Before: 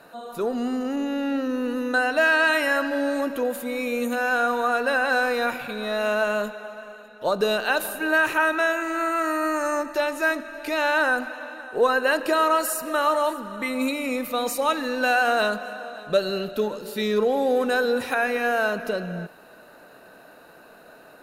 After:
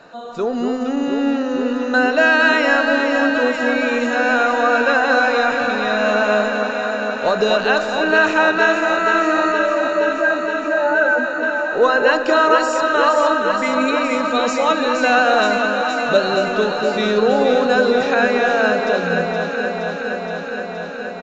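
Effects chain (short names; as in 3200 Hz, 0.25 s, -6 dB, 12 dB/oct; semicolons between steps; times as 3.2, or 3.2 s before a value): 9.52–11.43 spectral contrast raised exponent 3.8; echo with dull and thin repeats by turns 0.235 s, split 1200 Hz, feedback 88%, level -4.5 dB; downsampling 16000 Hz; gain +5 dB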